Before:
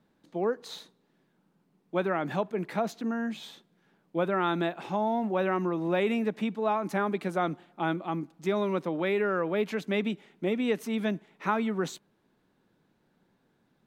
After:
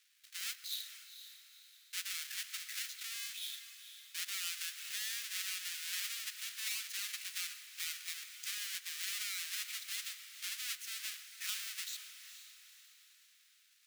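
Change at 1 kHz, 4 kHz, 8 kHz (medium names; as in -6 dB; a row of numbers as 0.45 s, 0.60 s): -28.0 dB, +4.5 dB, no reading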